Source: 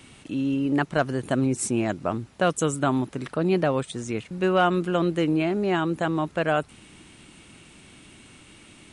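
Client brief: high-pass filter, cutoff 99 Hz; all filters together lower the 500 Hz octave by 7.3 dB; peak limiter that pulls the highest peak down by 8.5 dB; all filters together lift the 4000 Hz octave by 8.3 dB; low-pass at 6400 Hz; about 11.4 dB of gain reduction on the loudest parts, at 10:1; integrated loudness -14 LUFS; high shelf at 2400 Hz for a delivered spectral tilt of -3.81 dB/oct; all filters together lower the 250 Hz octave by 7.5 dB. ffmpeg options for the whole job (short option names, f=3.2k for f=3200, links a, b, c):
-af "highpass=99,lowpass=6.4k,equalizer=f=250:t=o:g=-7.5,equalizer=f=500:t=o:g=-8,highshelf=f=2.4k:g=4,equalizer=f=4k:t=o:g=9,acompressor=threshold=-30dB:ratio=10,volume=23.5dB,alimiter=limit=0dB:level=0:latency=1"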